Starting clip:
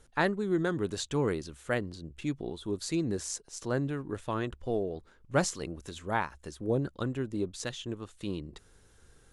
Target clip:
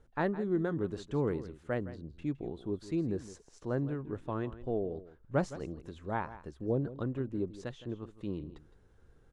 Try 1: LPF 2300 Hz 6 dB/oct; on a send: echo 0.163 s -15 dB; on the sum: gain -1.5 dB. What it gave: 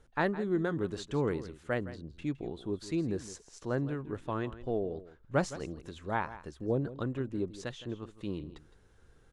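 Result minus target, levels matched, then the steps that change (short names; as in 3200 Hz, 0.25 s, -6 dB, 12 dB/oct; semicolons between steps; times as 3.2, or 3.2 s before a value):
2000 Hz band +4.0 dB
change: LPF 870 Hz 6 dB/oct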